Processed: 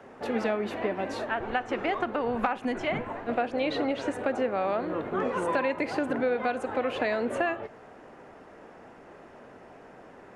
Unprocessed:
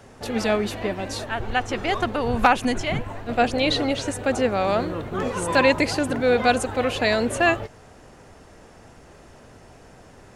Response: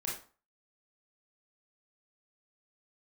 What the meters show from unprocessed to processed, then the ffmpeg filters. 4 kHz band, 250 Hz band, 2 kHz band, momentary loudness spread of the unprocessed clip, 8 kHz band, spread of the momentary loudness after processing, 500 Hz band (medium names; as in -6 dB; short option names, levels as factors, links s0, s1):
-13.0 dB, -6.0 dB, -8.0 dB, 9 LU, under -15 dB, 4 LU, -5.5 dB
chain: -filter_complex "[0:a]acrossover=split=190 2600:gain=0.141 1 0.158[s0][s1][s2];[s0][s1][s2]amix=inputs=3:normalize=0,acompressor=threshold=0.0562:ratio=6,asplit=2[s3][s4];[1:a]atrim=start_sample=2205,lowpass=8900[s5];[s4][s5]afir=irnorm=-1:irlink=0,volume=0.15[s6];[s3][s6]amix=inputs=2:normalize=0"